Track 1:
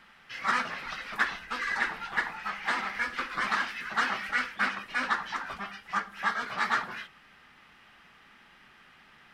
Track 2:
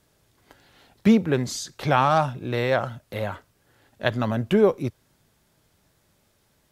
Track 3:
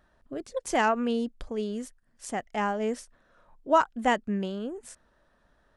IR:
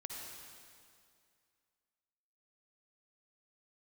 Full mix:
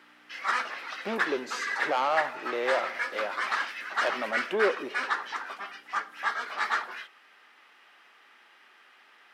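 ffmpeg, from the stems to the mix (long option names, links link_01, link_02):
-filter_complex "[0:a]volume=-0.5dB[link_01];[1:a]lowpass=frequency=2600:poles=1,asoftclip=type=tanh:threshold=-16.5dB,aeval=exprs='val(0)+0.00631*(sin(2*PI*60*n/s)+sin(2*PI*2*60*n/s)/2+sin(2*PI*3*60*n/s)/3+sin(2*PI*4*60*n/s)/4+sin(2*PI*5*60*n/s)/5)':channel_layout=same,volume=-3.5dB,asplit=2[link_02][link_03];[link_03]volume=-12dB[link_04];[3:a]atrim=start_sample=2205[link_05];[link_04][link_05]afir=irnorm=-1:irlink=0[link_06];[link_01][link_02][link_06]amix=inputs=3:normalize=0,highpass=frequency=330:width=0.5412,highpass=frequency=330:width=1.3066"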